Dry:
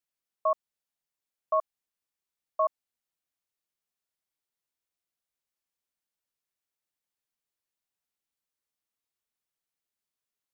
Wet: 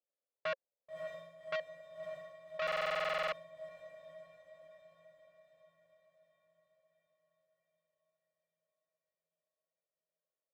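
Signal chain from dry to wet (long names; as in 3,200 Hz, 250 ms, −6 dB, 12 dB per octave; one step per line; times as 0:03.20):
0:01.55–0:02.62: downward compressor 10 to 1, threshold −32 dBFS, peak gain reduction 11 dB
resonant band-pass 540 Hz, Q 6.2
hard clipping −37 dBFS, distortion −10 dB
on a send: feedback delay with all-pass diffusion 586 ms, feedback 57%, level −9.5 dB
on the sum: buffer that repeats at 0:02.63, samples 2,048, times 14
saturating transformer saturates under 1,600 Hz
level +10 dB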